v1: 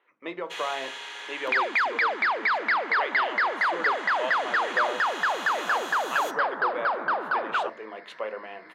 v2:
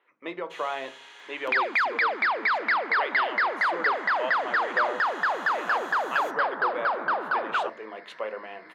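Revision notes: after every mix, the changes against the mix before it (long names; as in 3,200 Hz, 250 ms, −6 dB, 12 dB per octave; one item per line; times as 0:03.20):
first sound −9.5 dB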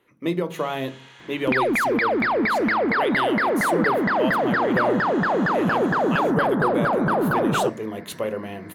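speech: remove band-pass filter 720–2,400 Hz
second sound: remove high-pass filter 960 Hz 12 dB per octave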